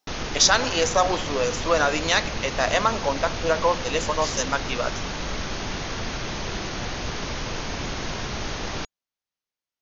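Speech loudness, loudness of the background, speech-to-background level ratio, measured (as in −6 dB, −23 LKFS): −23.0 LKFS, −30.5 LKFS, 7.5 dB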